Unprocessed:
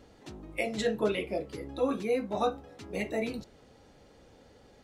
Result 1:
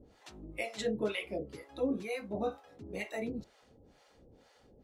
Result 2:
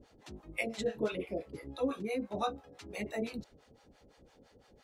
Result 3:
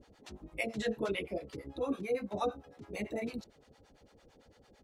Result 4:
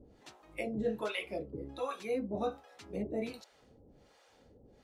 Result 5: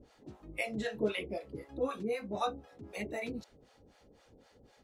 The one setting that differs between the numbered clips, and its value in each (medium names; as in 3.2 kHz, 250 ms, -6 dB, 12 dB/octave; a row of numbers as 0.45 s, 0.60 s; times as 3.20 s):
harmonic tremolo, rate: 2.1 Hz, 5.9 Hz, 8.9 Hz, 1.3 Hz, 3.9 Hz